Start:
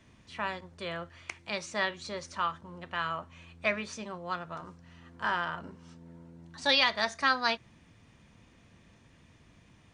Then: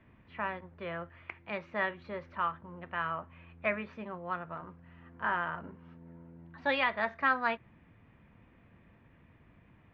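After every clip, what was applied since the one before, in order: low-pass 2.4 kHz 24 dB/octave; trim -1 dB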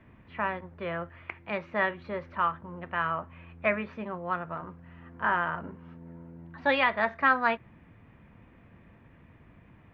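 treble shelf 3.8 kHz -5.5 dB; trim +5.5 dB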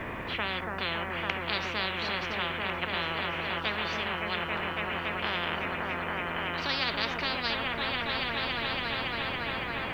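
delay with an opening low-pass 280 ms, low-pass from 400 Hz, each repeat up 1 oct, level -3 dB; spectrum-flattening compressor 10:1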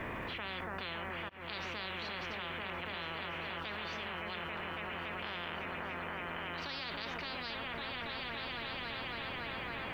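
level held to a coarse grid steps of 22 dB; slow attack 228 ms; trim +3 dB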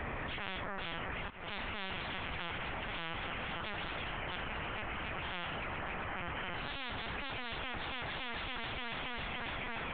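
reverberation RT60 0.75 s, pre-delay 42 ms, DRR 16.5 dB; LPC vocoder at 8 kHz pitch kept; trim +1 dB

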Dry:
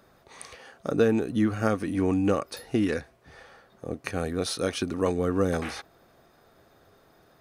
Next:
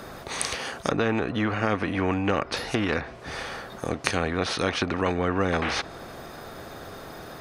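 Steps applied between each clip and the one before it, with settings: low-pass that closes with the level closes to 1.9 kHz, closed at -25 dBFS; loudness maximiser +12 dB; spectrum-flattening compressor 2:1; trim -1 dB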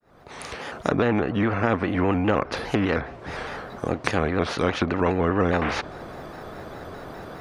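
fade-in on the opening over 0.88 s; treble shelf 3.1 kHz -12 dB; vibrato with a chosen wave square 4.9 Hz, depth 100 cents; trim +3.5 dB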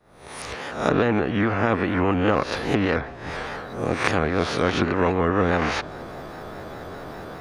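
reverse spectral sustain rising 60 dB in 0.48 s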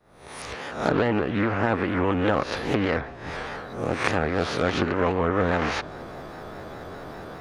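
loudspeaker Doppler distortion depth 0.26 ms; trim -2 dB

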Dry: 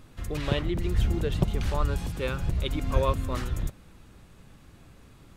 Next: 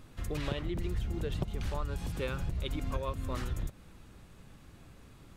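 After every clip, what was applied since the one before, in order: compression 6:1, threshold -28 dBFS, peak gain reduction 12.5 dB; trim -2 dB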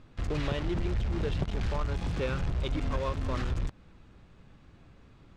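in parallel at -7.5 dB: companded quantiser 2-bit; on the sum: distance through air 120 m; trim -1 dB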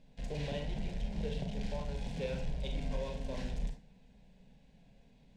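static phaser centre 330 Hz, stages 6; on a send at -3 dB: reverberation RT60 0.40 s, pre-delay 27 ms; on the sum: trim -5 dB

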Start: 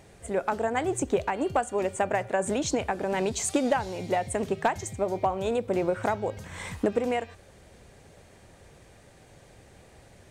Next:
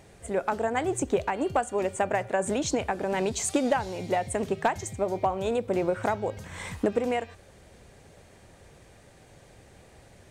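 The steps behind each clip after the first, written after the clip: no audible change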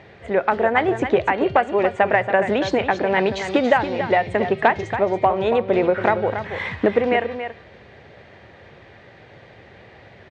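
cabinet simulation 100–3900 Hz, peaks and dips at 170 Hz -4 dB, 270 Hz -4 dB, 1.9 kHz +6 dB; delay 280 ms -9.5 dB; trim +8.5 dB

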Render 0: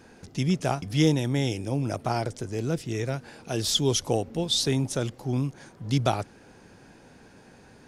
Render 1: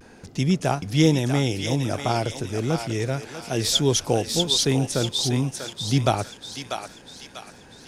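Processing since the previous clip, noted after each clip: vibrato 0.31 Hz 22 cents; on a send: thinning echo 643 ms, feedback 49%, high-pass 1.1 kHz, level -3.5 dB; on the sum: trim +3.5 dB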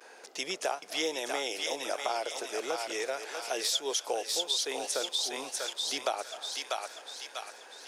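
high-pass 470 Hz 24 dB/octave; reverberation RT60 0.30 s, pre-delay 235 ms, DRR 23 dB; compression 3:1, threshold -30 dBFS, peak gain reduction 11 dB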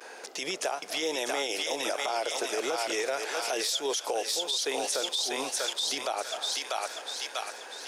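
peak limiter -27.5 dBFS, peak gain reduction 10.5 dB; trim +7 dB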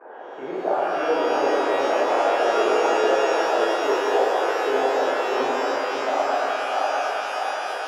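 low-pass 1.2 kHz 24 dB/octave; bass shelf 190 Hz -11 dB; pitch-shifted reverb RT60 3.6 s, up +12 st, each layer -8 dB, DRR -9 dB; trim +4 dB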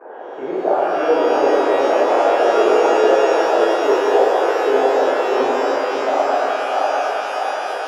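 peaking EQ 420 Hz +5.5 dB 2.1 oct; trim +1.5 dB

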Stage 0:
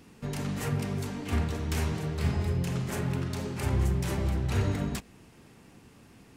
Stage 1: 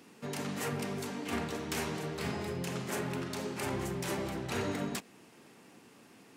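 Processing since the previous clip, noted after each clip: high-pass 240 Hz 12 dB/octave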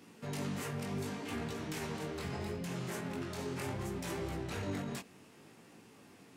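peaking EQ 71 Hz +7.5 dB 1.9 oct; peak limiter -29 dBFS, peak gain reduction 8.5 dB; chorus 0.7 Hz, delay 17.5 ms, depth 4.7 ms; trim +1.5 dB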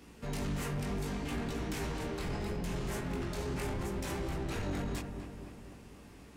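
octave divider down 2 oct, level -1 dB; on a send: filtered feedback delay 248 ms, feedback 61%, low-pass 1.7 kHz, level -7.5 dB; on the sum: overload inside the chain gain 32 dB; trim +1.5 dB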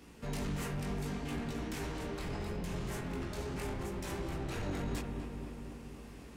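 gain riding within 4 dB 2 s; spring tank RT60 3.2 s, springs 47/57 ms, chirp 65 ms, DRR 9 dB; trim -2.5 dB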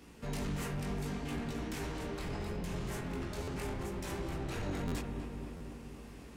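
buffer glitch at 3.43/4.87/5.56 s, samples 512, times 3

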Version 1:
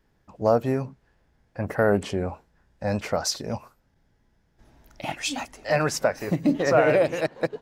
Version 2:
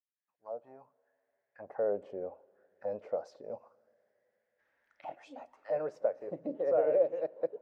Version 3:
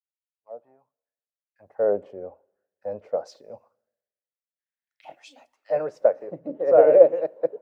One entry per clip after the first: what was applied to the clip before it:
fade-in on the opening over 2.28 s; auto-wah 520–1900 Hz, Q 3.8, down, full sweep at -26.5 dBFS; two-slope reverb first 0.23 s, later 3.4 s, from -19 dB, DRR 18.5 dB; trim -4.5 dB
three bands expanded up and down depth 100%; trim +7 dB

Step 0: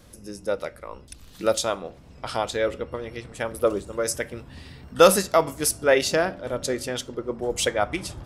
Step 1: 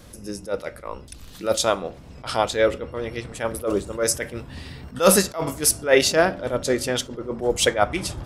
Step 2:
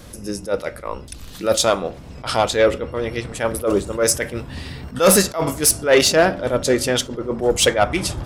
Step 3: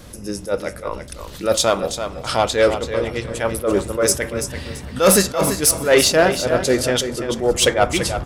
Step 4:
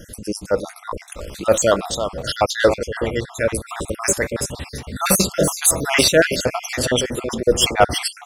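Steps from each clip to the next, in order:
attacks held to a fixed rise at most 200 dB/s; trim +5.5 dB
saturation -11.5 dBFS, distortion -15 dB; trim +5.5 dB
feedback delay 335 ms, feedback 26%, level -9 dB
random holes in the spectrogram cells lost 50%; trim +3 dB

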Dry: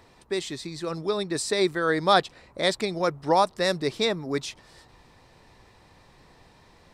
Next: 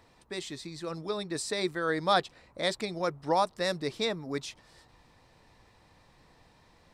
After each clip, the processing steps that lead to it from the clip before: band-stop 390 Hz, Q 12; trim -5.5 dB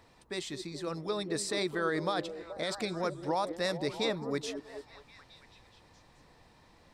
peak limiter -22 dBFS, peak gain reduction 11.5 dB; repeats whose band climbs or falls 215 ms, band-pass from 300 Hz, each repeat 0.7 oct, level -5.5 dB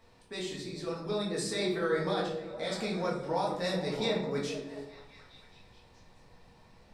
reverberation RT60 0.70 s, pre-delay 4 ms, DRR -5 dB; trim -6 dB

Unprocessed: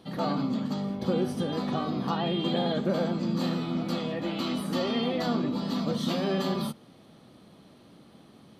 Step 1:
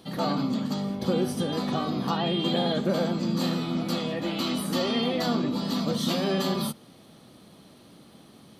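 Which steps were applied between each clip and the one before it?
treble shelf 4.8 kHz +9 dB; trim +1.5 dB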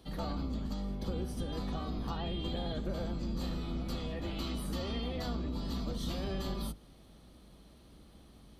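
octave divider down 2 oct, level +4 dB; compression 2.5:1, threshold -26 dBFS, peak gain reduction 6.5 dB; trim -8.5 dB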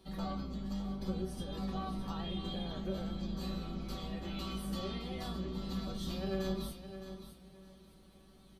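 feedback comb 190 Hz, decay 0.17 s, harmonics all, mix 90%; on a send: feedback delay 614 ms, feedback 23%, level -11 dB; on the sum: trim +6.5 dB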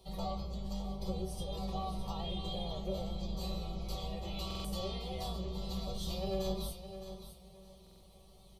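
static phaser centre 650 Hz, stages 4; buffer glitch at 4.46/7.82 s, samples 2048, times 3; trim +4.5 dB

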